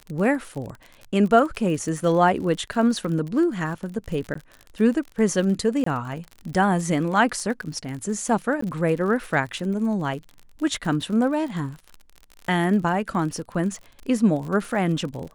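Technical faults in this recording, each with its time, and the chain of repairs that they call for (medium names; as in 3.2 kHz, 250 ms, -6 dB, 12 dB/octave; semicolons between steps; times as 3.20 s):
crackle 43 per s -31 dBFS
4.34–4.35 s: dropout 14 ms
5.84–5.86 s: dropout 24 ms
8.61–8.62 s: dropout 14 ms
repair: de-click; interpolate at 4.34 s, 14 ms; interpolate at 5.84 s, 24 ms; interpolate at 8.61 s, 14 ms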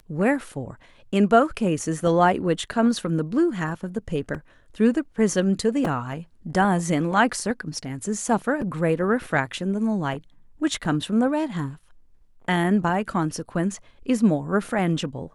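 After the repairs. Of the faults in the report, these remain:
nothing left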